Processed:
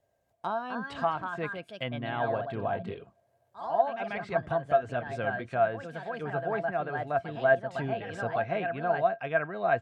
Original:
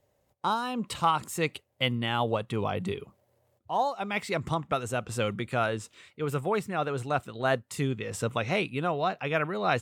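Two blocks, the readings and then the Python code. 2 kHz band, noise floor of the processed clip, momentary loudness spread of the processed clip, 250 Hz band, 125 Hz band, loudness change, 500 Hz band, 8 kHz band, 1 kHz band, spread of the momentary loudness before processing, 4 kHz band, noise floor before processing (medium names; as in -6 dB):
+0.5 dB, -72 dBFS, 9 LU, -5.0 dB, -5.5 dB, -0.5 dB, +2.0 dB, under -20 dB, -0.5 dB, 5 LU, -11.5 dB, -72 dBFS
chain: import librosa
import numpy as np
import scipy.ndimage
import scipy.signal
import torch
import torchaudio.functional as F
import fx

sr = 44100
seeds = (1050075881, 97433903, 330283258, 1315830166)

y = fx.echo_pitch(x, sr, ms=306, semitones=2, count=2, db_per_echo=-6.0)
y = fx.env_lowpass_down(y, sr, base_hz=2100.0, full_db=-25.5)
y = fx.small_body(y, sr, hz=(680.0, 1600.0), ring_ms=100, db=18)
y = y * 10.0 ** (-6.5 / 20.0)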